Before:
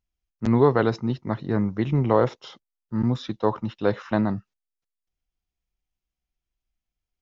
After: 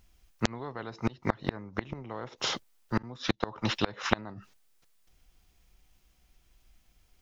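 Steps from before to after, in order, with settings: flipped gate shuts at -17 dBFS, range -33 dB; spectral compressor 2:1; gain +7 dB

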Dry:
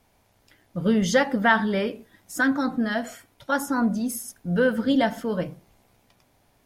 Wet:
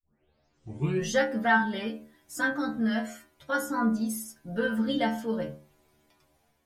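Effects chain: tape start at the beginning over 1.12 s; AGC gain up to 5.5 dB; metallic resonator 73 Hz, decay 0.41 s, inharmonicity 0.002

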